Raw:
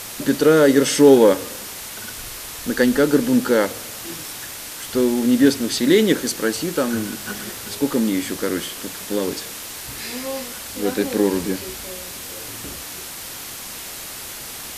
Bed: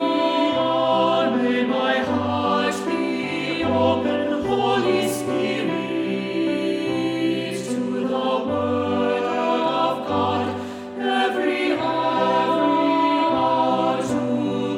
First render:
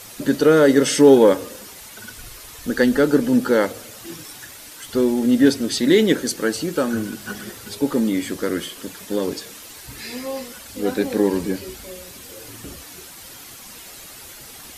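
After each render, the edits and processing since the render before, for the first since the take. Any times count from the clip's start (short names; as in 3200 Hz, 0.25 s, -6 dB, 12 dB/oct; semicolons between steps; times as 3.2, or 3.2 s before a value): denoiser 9 dB, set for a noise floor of -34 dBFS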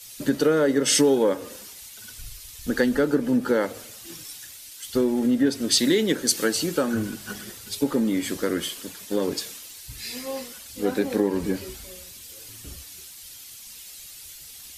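compressor 5:1, threshold -19 dBFS, peak gain reduction 11.5 dB; three-band expander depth 70%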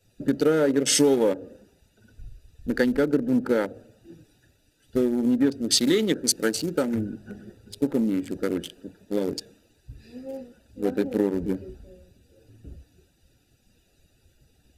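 Wiener smoothing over 41 samples; notch 1100 Hz, Q 7.2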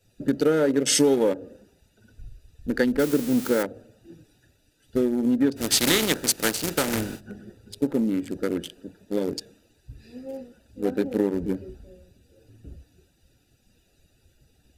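2.99–3.63 switching spikes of -20 dBFS; 5.56–7.19 spectral contrast lowered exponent 0.51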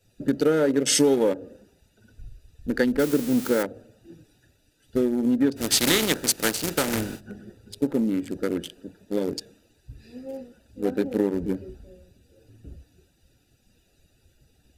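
nothing audible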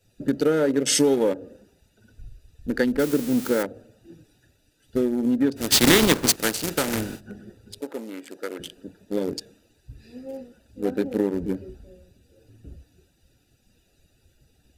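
5.72–6.36 half-waves squared off; 7.81–8.6 HPF 550 Hz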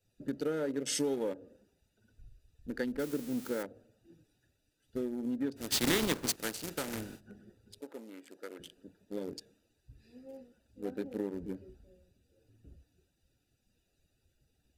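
gain -13 dB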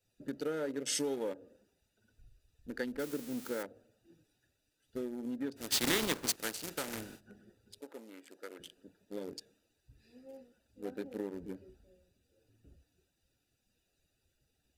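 low shelf 370 Hz -6 dB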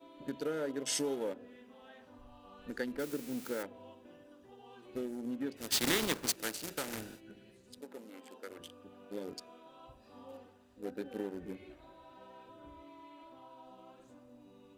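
add bed -35.5 dB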